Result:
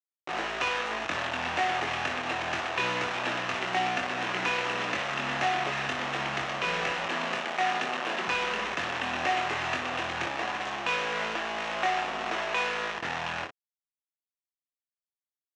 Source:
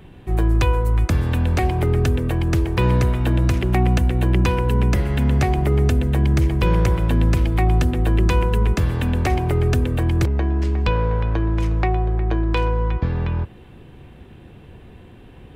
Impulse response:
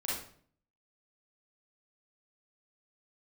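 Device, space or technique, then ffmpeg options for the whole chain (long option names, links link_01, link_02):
hand-held game console: -filter_complex "[0:a]asettb=1/sr,asplit=3[link_01][link_02][link_03];[link_01]atrim=end=7.054[link_04];[link_02]atrim=start=7.05:end=8.28,asetpts=PTS-STARTPTS,afade=type=in:duration=0.004:curve=qsin,afade=type=out:start_time=1.226:duration=0.004:curve=qsin,highpass=170[link_05];[link_03]atrim=start=8.276[link_06];[link_04][link_05]acrossfade=duration=0.004:curve1=hsin:curve2=qsin[link_07];[link_07][link_06]acrossfade=duration=0.004:curve1=qsin:curve2=hsin,acrusher=bits=3:mix=0:aa=0.000001,highpass=410,equalizer=frequency=460:width_type=q:width=4:gain=-4,equalizer=frequency=710:width_type=q:width=4:gain=4,equalizer=frequency=1200:width_type=q:width=4:gain=4,equalizer=frequency=1800:width_type=q:width=4:gain=5,equalizer=frequency=2700:width_type=q:width=4:gain=6,equalizer=frequency=4700:width_type=q:width=4:gain=-6,lowpass=frequency=5700:width=0.5412,lowpass=frequency=5700:width=1.3066,aecho=1:1:23|59:0.596|0.355,volume=-8dB"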